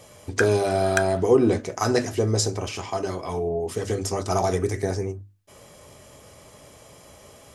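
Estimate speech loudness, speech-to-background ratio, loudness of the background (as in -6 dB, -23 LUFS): -24.0 LUFS, 6.0 dB, -30.0 LUFS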